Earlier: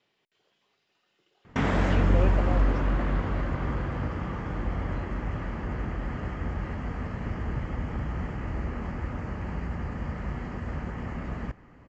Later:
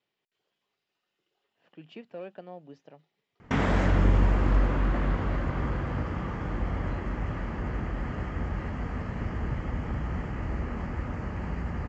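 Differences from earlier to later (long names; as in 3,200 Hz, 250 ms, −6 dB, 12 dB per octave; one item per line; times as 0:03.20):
speech −9.5 dB
background: entry +1.95 s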